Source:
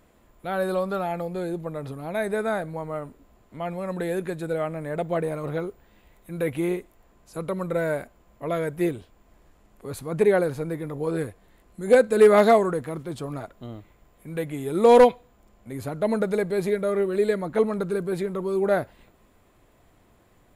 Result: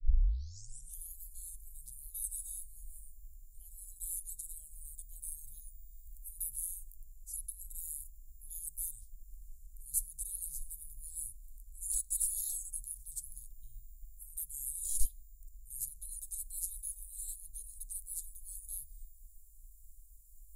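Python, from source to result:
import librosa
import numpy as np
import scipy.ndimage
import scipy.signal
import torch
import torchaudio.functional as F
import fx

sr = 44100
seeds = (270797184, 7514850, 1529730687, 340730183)

y = fx.tape_start_head(x, sr, length_s=1.1)
y = scipy.signal.sosfilt(scipy.signal.cheby2(4, 70, [180.0, 2200.0], 'bandstop', fs=sr, output='sos'), y)
y = y * 10.0 ** (11.0 / 20.0)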